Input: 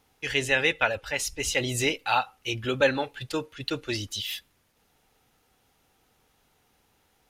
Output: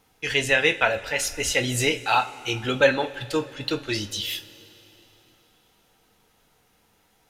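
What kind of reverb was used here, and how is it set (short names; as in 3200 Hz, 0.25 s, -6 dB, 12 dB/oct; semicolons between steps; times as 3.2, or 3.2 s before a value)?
two-slope reverb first 0.22 s, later 3.6 s, from -22 dB, DRR 5.5 dB; gain +2.5 dB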